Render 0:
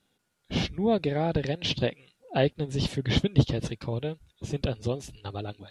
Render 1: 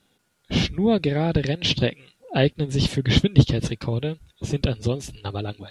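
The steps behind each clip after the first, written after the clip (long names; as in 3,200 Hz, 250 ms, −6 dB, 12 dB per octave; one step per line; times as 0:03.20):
dynamic equaliser 730 Hz, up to −6 dB, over −39 dBFS, Q 0.96
level +7 dB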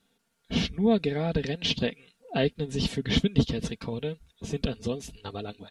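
comb filter 4.4 ms, depth 56%
level −6.5 dB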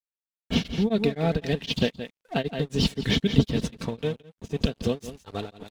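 dead-zone distortion −47.5 dBFS
single-tap delay 170 ms −12.5 dB
tremolo along a rectified sine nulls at 3.9 Hz
level +6 dB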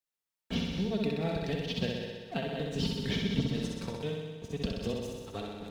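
tuned comb filter 180 Hz, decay 0.64 s, harmonics odd, mix 70%
on a send: flutter between parallel walls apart 10.8 metres, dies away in 1.1 s
on the sum: multiband upward and downward compressor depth 40%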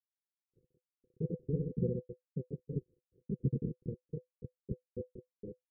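time-frequency cells dropped at random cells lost 76%
centre clipping without the shift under −40.5 dBFS
Chebyshev low-pass with heavy ripple 520 Hz, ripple 9 dB
level +4.5 dB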